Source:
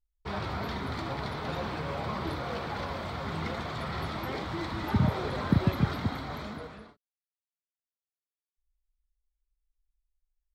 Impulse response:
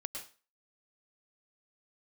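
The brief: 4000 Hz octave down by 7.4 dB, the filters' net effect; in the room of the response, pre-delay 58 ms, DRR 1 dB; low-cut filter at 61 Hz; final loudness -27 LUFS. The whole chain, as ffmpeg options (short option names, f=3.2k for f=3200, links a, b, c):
-filter_complex "[0:a]highpass=61,equalizer=f=4k:t=o:g=-9,asplit=2[a][b];[1:a]atrim=start_sample=2205,adelay=58[c];[b][c]afir=irnorm=-1:irlink=0,volume=-0.5dB[d];[a][d]amix=inputs=2:normalize=0,volume=3.5dB"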